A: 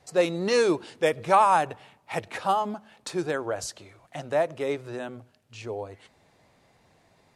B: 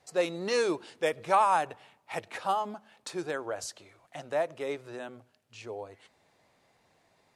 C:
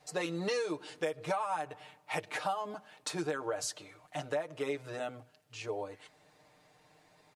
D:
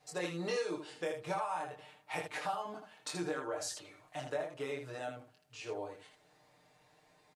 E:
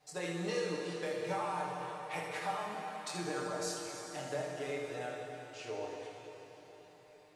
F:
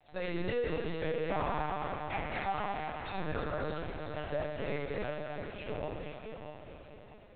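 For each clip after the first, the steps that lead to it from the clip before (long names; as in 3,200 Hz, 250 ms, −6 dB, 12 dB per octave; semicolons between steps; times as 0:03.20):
low-shelf EQ 230 Hz −8 dB; level −4 dB
comb filter 6.6 ms, depth 85%; downward compressor 16 to 1, threshold −31 dBFS, peak gain reduction 15.5 dB; level +1 dB
ambience of single reflections 23 ms −3.5 dB, 79 ms −6 dB; level −5 dB
dense smooth reverb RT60 4.3 s, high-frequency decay 0.9×, DRR 0 dB; level −2 dB
feedback delay that plays each chunk backwards 325 ms, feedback 56%, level −7 dB; linear-prediction vocoder at 8 kHz pitch kept; level +2.5 dB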